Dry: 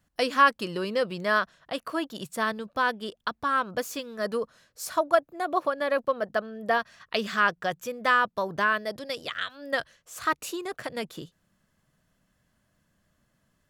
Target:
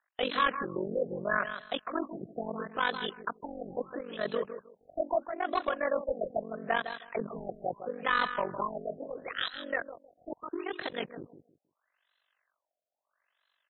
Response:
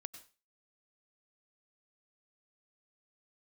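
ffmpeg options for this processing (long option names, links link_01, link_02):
-filter_complex "[0:a]highpass=190,equalizer=frequency=4500:width_type=o:width=0.97:gain=13,acrossover=split=720|4100[link_01][link_02][link_03];[link_01]aeval=exprs='val(0)*gte(abs(val(0)),0.00237)':channel_layout=same[link_04];[link_04][link_02][link_03]amix=inputs=3:normalize=0,tremolo=f=47:d=0.974,asoftclip=type=tanh:threshold=-22dB,asplit=2[link_05][link_06];[link_06]aecho=0:1:157|314|471:0.316|0.0664|0.0139[link_07];[link_05][link_07]amix=inputs=2:normalize=0,afftfilt=real='re*lt(b*sr/1024,750*pow(4200/750,0.5+0.5*sin(2*PI*0.76*pts/sr)))':imag='im*lt(b*sr/1024,750*pow(4200/750,0.5+0.5*sin(2*PI*0.76*pts/sr)))':win_size=1024:overlap=0.75,volume=2dB"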